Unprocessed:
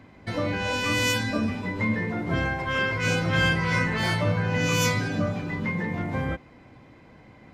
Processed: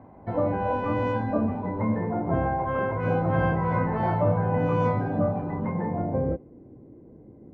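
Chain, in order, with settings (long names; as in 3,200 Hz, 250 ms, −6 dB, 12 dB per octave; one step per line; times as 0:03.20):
low-pass filter sweep 820 Hz → 390 Hz, 0:05.86–0:06.51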